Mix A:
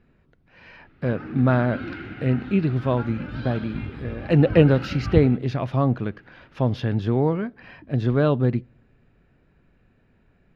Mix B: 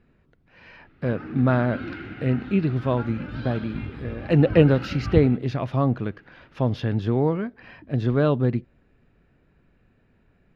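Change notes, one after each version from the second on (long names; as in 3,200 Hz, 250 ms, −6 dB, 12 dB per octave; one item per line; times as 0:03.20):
reverb: off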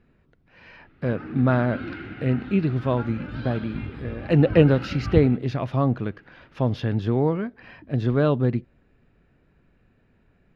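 background: add low-pass filter 6,100 Hz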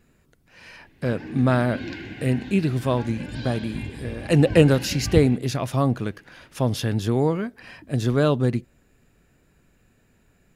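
background: add Butterworth band-reject 1,300 Hz, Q 3.2
master: remove high-frequency loss of the air 290 metres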